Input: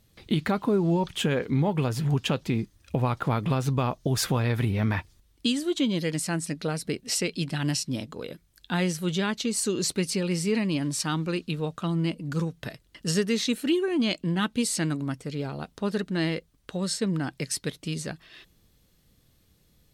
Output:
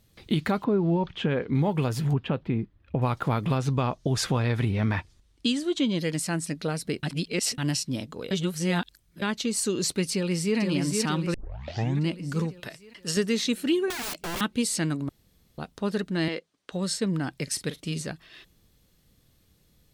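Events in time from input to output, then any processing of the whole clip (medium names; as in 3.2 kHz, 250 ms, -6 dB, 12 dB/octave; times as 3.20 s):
0.64–1.55 s: distance through air 240 m
2.13–3.02 s: distance through air 480 m
3.58–6.01 s: low-pass 8.5 kHz
7.03–7.58 s: reverse
8.31–9.22 s: reverse
10.13–10.58 s: echo throw 470 ms, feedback 60%, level -3.5 dB
11.34 s: tape start 0.72 s
12.60–13.17 s: bass shelf 340 Hz -9 dB
13.90–14.41 s: integer overflow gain 28 dB
15.09–15.58 s: room tone
16.28–16.72 s: band-pass 300–7000 Hz
17.43–18.01 s: doubling 43 ms -13 dB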